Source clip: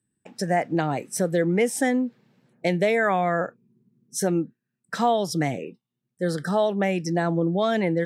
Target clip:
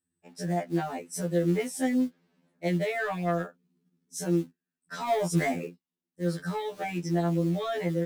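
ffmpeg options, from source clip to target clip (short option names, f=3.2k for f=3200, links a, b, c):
-filter_complex "[0:a]asplit=3[a][b][c];[a]afade=t=out:st=5.07:d=0.02[d];[b]equalizer=f=125:t=o:w=1:g=8,equalizer=f=250:t=o:w=1:g=4,equalizer=f=500:t=o:w=1:g=6,equalizer=f=1k:t=o:w=1:g=8,equalizer=f=2k:t=o:w=1:g=11,equalizer=f=4k:t=o:w=1:g=-11,equalizer=f=8k:t=o:w=1:g=10,afade=t=in:st=5.07:d=0.02,afade=t=out:st=5.67:d=0.02[e];[c]afade=t=in:st=5.67:d=0.02[f];[d][e][f]amix=inputs=3:normalize=0,acrossover=split=470|2000[g][h][i];[g]acrusher=bits=5:mode=log:mix=0:aa=0.000001[j];[h]asoftclip=type=tanh:threshold=-22dB[k];[j][k][i]amix=inputs=3:normalize=0,afftfilt=real='re*2*eq(mod(b,4),0)':imag='im*2*eq(mod(b,4),0)':win_size=2048:overlap=0.75,volume=-4.5dB"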